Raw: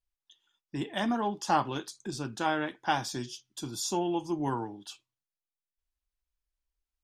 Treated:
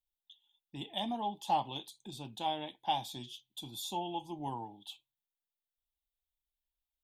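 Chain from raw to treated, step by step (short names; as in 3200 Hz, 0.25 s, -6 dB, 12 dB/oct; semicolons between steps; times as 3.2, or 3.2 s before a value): EQ curve 220 Hz 0 dB, 400 Hz -5 dB, 860 Hz +7 dB, 1400 Hz -19 dB, 2100 Hz -3 dB, 3600 Hz +12 dB, 5200 Hz -9 dB, 14000 Hz +11 dB; gain -8.5 dB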